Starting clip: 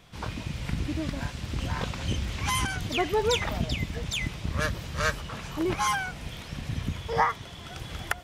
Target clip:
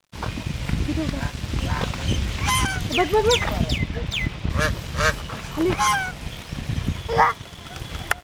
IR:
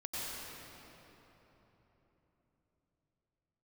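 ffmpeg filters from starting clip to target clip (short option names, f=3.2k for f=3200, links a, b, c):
-filter_complex "[0:a]asettb=1/sr,asplit=3[a][b][c];[a]atrim=end=3.784[d];[b]atrim=start=3.78:end=4.5,asetpts=PTS-STARTPTS,afade=t=in:d=0.004:c=qsin,afade=t=out:st=0.716:d=0.004:c=qsin,lowpass=4.1k[e];[c]atrim=start=4.496[f];[d][e]acrossfade=d=0.004:c1=hsin:c2=qsin[g];[g][f]acrossfade=d=0.004:c1=qsin:c2=hsin,aeval=exprs='sgn(val(0))*max(abs(val(0))-0.00376,0)':c=same,volume=7dB"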